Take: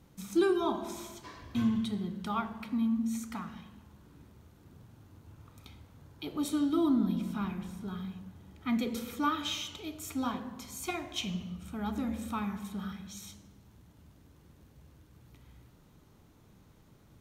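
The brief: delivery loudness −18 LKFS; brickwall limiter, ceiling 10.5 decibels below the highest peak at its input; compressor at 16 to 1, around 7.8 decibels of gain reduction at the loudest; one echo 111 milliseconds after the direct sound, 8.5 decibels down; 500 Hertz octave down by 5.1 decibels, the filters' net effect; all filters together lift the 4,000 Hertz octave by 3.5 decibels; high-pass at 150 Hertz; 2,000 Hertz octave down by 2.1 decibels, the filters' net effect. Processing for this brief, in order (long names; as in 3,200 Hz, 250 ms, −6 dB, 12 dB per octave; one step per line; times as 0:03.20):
high-pass filter 150 Hz
parametric band 500 Hz −8.5 dB
parametric band 2,000 Hz −4 dB
parametric band 4,000 Hz +6 dB
downward compressor 16 to 1, threshold −33 dBFS
brickwall limiter −33 dBFS
single-tap delay 111 ms −8.5 dB
level +23 dB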